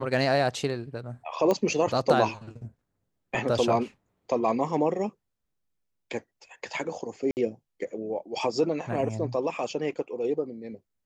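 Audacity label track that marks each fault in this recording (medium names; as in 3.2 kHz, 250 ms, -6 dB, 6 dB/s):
1.510000	1.510000	pop -13 dBFS
7.310000	7.370000	dropout 59 ms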